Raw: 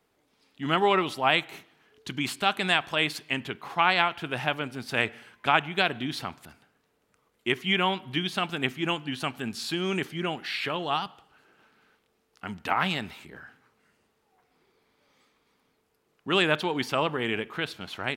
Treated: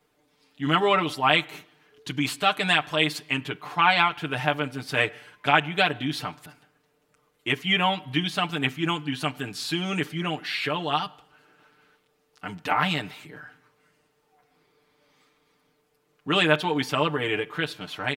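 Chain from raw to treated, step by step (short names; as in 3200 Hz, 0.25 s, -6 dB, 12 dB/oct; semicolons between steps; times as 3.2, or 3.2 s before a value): comb 6.7 ms, depth 89%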